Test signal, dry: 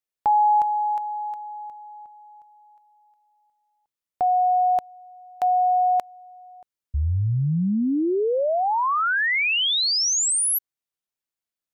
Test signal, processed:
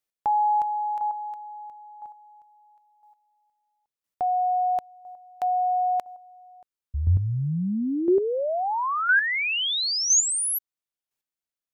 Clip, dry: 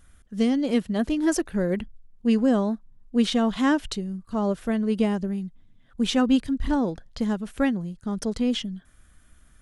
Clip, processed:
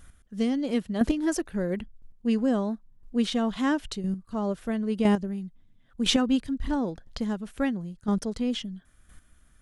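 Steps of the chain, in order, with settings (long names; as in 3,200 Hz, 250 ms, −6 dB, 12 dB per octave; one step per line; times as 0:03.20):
square-wave tremolo 0.99 Hz, depth 60%, duty 10%
level +4 dB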